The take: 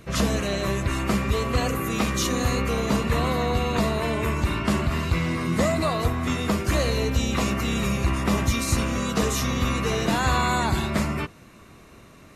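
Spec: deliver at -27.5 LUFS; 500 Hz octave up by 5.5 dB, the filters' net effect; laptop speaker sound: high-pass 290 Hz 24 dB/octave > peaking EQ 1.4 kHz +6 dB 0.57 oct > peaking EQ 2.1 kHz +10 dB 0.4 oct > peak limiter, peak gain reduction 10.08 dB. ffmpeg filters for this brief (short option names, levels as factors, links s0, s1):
-af "highpass=f=290:w=0.5412,highpass=f=290:w=1.3066,equalizer=f=500:t=o:g=6.5,equalizer=f=1400:t=o:w=0.57:g=6,equalizer=f=2100:t=o:w=0.4:g=10,volume=0.794,alimiter=limit=0.112:level=0:latency=1"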